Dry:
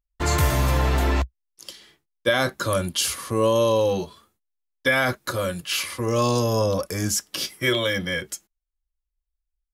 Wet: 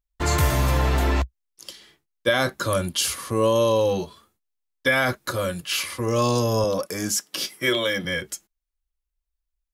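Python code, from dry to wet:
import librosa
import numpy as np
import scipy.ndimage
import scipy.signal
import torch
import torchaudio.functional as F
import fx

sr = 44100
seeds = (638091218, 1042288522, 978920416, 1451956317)

y = fx.highpass(x, sr, hz=170.0, slope=12, at=(6.64, 8.05))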